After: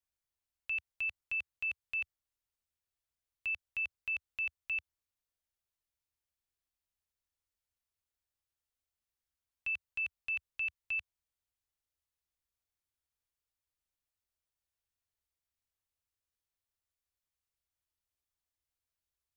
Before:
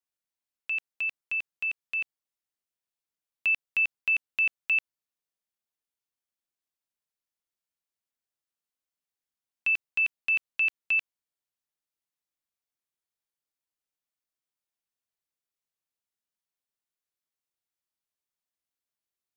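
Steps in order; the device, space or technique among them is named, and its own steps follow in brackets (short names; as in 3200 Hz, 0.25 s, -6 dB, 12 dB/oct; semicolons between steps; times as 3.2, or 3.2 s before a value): car stereo with a boomy subwoofer (resonant low shelf 120 Hz +13 dB, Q 1.5; limiter -28.5 dBFS, peak gain reduction 9 dB); gain -2 dB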